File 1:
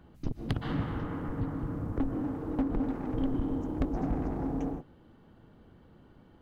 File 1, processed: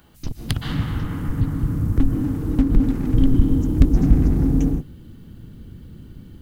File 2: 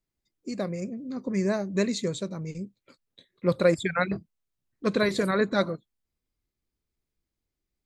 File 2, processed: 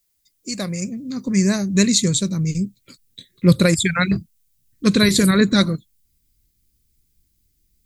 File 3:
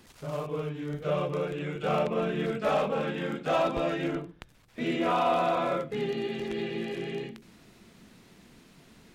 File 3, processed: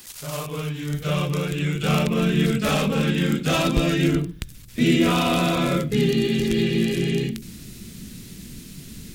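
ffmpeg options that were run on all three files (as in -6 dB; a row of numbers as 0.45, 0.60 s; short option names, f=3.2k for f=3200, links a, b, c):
-af "crystalizer=i=9.5:c=0,asubboost=boost=12:cutoff=230"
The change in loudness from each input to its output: +13.0, +9.5, +8.0 LU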